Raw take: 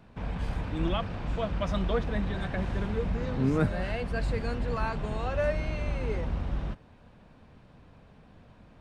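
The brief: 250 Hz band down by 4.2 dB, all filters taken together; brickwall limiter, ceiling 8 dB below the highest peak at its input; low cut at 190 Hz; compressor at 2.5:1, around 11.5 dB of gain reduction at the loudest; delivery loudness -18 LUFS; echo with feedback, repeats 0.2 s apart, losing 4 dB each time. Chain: HPF 190 Hz; bell 250 Hz -3 dB; compressor 2.5:1, threshold -43 dBFS; limiter -37 dBFS; feedback echo 0.2 s, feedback 63%, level -4 dB; gain +26 dB

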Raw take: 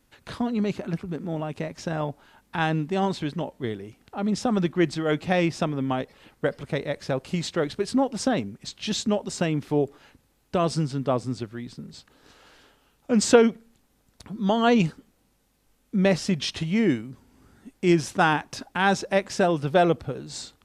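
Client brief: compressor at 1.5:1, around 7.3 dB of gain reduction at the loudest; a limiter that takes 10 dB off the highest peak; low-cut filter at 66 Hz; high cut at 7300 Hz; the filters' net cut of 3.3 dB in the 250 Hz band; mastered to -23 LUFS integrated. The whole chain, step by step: HPF 66 Hz; LPF 7300 Hz; bell 250 Hz -4.5 dB; compressor 1.5:1, threshold -32 dBFS; gain +11.5 dB; limiter -11 dBFS

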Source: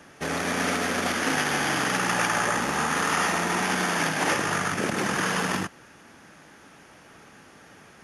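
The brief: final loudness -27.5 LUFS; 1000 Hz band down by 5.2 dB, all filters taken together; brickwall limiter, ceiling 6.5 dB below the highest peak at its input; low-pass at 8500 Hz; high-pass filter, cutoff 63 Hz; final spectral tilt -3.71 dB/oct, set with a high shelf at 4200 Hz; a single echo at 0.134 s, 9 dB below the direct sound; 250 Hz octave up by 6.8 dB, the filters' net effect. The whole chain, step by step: HPF 63 Hz; LPF 8500 Hz; bell 250 Hz +9 dB; bell 1000 Hz -8 dB; high shelf 4200 Hz +3.5 dB; limiter -16 dBFS; echo 0.134 s -9 dB; gain -2 dB

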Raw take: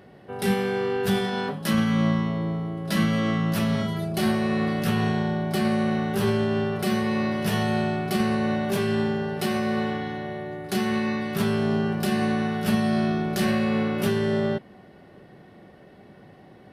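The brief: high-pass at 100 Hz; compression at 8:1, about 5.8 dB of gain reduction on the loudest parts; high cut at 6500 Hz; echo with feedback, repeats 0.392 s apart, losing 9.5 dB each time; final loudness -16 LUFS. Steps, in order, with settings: HPF 100 Hz; LPF 6500 Hz; compressor 8:1, threshold -24 dBFS; feedback echo 0.392 s, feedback 33%, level -9.5 dB; gain +12 dB

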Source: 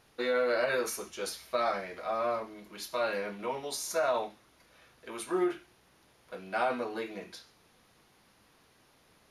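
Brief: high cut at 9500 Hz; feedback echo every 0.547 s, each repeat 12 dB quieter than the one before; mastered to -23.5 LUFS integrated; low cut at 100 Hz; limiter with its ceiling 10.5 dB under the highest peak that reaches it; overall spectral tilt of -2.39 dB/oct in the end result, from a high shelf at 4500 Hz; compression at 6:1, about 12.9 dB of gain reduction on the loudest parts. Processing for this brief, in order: HPF 100 Hz; LPF 9500 Hz; high shelf 4500 Hz +6.5 dB; compressor 6:1, threshold -39 dBFS; limiter -35.5 dBFS; feedback echo 0.547 s, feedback 25%, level -12 dB; gain +22 dB

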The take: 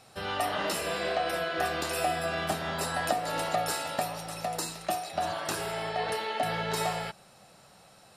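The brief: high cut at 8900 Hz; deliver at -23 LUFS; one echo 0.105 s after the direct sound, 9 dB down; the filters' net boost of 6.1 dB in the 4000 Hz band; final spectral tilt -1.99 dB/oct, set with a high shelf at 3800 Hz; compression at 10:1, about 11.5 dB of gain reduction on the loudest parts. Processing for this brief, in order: LPF 8900 Hz; high shelf 3800 Hz +6 dB; bell 4000 Hz +4 dB; compressor 10:1, threshold -36 dBFS; echo 0.105 s -9 dB; gain +15 dB

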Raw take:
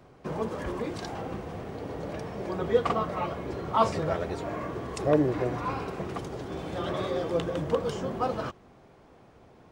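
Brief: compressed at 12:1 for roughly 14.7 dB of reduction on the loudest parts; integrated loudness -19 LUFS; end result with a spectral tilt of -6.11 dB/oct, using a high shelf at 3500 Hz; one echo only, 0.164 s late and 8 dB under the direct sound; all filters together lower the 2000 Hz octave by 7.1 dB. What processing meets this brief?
bell 2000 Hz -8.5 dB; high shelf 3500 Hz -4.5 dB; compressor 12:1, threshold -32 dBFS; echo 0.164 s -8 dB; gain +18 dB

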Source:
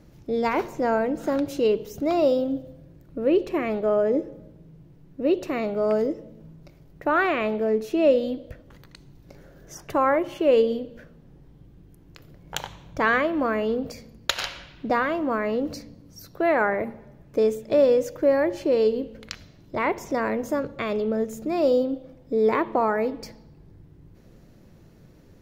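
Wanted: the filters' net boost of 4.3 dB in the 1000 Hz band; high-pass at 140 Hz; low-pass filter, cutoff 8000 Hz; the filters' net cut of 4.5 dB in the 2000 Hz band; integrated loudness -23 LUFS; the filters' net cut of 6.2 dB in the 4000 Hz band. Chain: HPF 140 Hz; LPF 8000 Hz; bell 1000 Hz +8 dB; bell 2000 Hz -9 dB; bell 4000 Hz -5 dB

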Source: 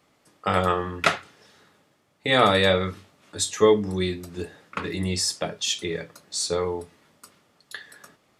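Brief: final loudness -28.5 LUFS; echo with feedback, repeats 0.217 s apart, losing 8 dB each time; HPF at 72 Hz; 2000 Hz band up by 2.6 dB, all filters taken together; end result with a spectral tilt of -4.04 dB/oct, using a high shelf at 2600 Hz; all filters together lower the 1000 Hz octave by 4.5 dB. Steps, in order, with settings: HPF 72 Hz; bell 1000 Hz -8.5 dB; bell 2000 Hz +8 dB; high shelf 2600 Hz -6.5 dB; feedback echo 0.217 s, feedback 40%, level -8 dB; gain -3.5 dB

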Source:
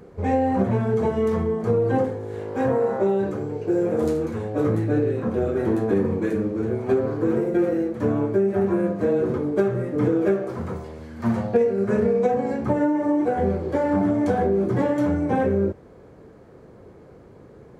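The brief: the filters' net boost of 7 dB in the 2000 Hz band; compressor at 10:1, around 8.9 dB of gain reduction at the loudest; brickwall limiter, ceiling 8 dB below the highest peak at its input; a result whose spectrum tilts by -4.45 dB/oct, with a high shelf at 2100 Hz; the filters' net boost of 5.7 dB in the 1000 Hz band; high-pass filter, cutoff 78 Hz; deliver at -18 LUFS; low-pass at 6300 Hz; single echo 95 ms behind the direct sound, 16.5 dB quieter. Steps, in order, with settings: HPF 78 Hz; LPF 6300 Hz; bell 1000 Hz +7 dB; bell 2000 Hz +8 dB; high shelf 2100 Hz -3 dB; compressor 10:1, threshold -23 dBFS; limiter -20.5 dBFS; echo 95 ms -16.5 dB; gain +11 dB

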